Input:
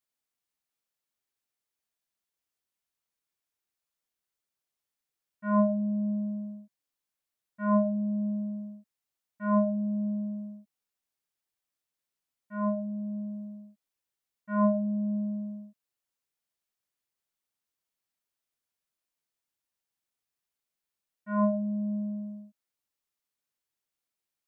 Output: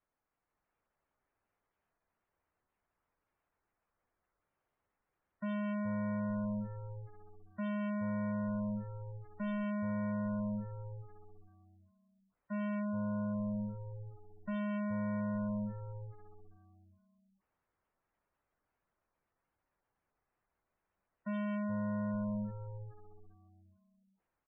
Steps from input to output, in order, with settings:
low-pass filter 1,100 Hz 12 dB per octave
low-shelf EQ 90 Hz +11 dB
mains-hum notches 60/120/180/240 Hz
in parallel at −2 dB: downward compressor 8 to 1, threshold −40 dBFS, peak gain reduction 20 dB
on the sum: brickwall limiter −21.5 dBFS, peak gain reduction 6.5 dB
automatic gain control gain up to 3.5 dB
gain into a clipping stage and back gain 35.5 dB
on a send: echo with shifted repeats 420 ms, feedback 33%, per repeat −100 Hz, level −8.5 dB
on the sum: gate on every frequency bin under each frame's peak −25 dB strong
one half of a high-frequency compander encoder only

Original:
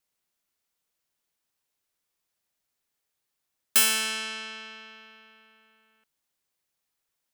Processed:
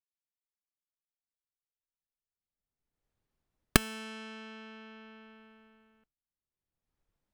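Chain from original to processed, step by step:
camcorder AGC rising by 9.7 dB per second
downward expander −39 dBFS
spectral tilt −4.5 dB per octave
level −12 dB

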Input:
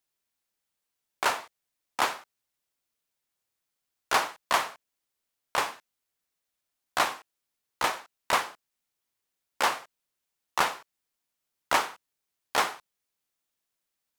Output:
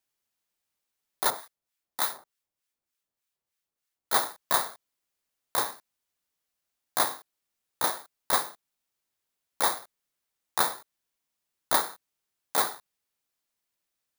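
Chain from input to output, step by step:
samples in bit-reversed order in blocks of 16 samples
0:01.30–0:04.13: two-band tremolo in antiphase 3.3 Hz, depth 70%, crossover 1,100 Hz

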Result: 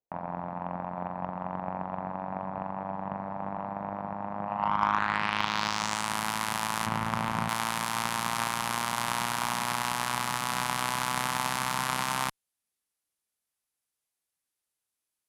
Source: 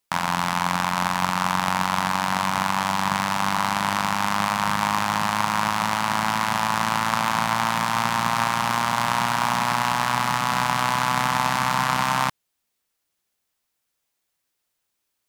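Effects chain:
low-pass filter sweep 620 Hz → 11,000 Hz, 0:04.44–0:06.16
0:06.86–0:07.49: spectral tilt −3 dB per octave
harmonic generator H 2 −18 dB, 7 −27 dB, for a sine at −2 dBFS
level −7.5 dB

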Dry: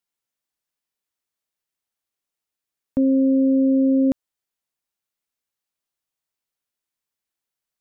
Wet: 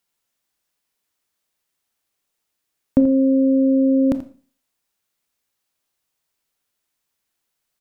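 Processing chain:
downward compressor, threshold −18 dBFS, peak gain reduction 3.5 dB
on a send: single-tap delay 84 ms −13.5 dB
on the sum: four-comb reverb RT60 0.43 s, combs from 25 ms, DRR 11 dB
level +8.5 dB

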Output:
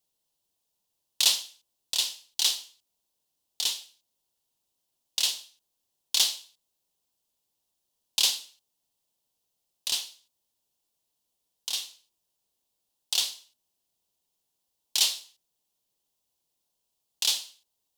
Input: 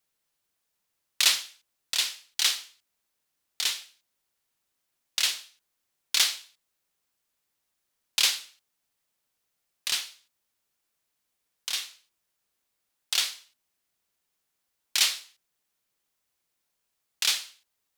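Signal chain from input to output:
flat-topped bell 1,700 Hz −12 dB 1.2 octaves

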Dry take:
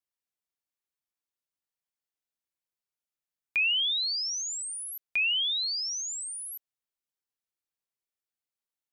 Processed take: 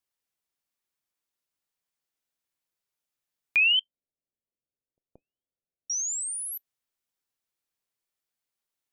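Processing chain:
0:03.79–0:05.90: Butterworth low-pass 640 Hz 36 dB per octave
convolution reverb, pre-delay 7 ms, DRR 22 dB
level +4.5 dB

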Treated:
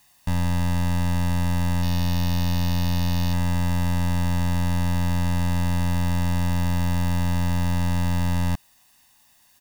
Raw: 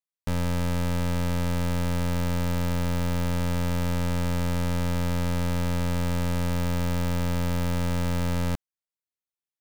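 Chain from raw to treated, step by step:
0:01.82–0:03.33: phase distortion by the signal itself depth 0.11 ms
bit-depth reduction 10 bits, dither triangular
comb filter 1.1 ms, depth 71%

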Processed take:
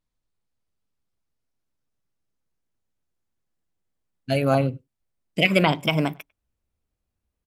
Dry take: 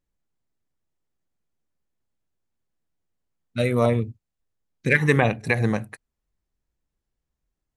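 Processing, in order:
gliding playback speed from 55% → 153%
far-end echo of a speakerphone 100 ms, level −27 dB

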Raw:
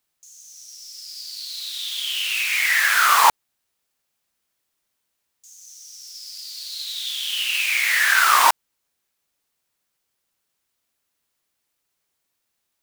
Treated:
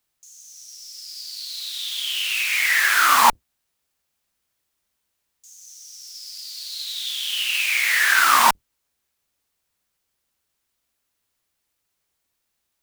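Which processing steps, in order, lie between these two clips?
sub-octave generator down 2 octaves, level −1 dB

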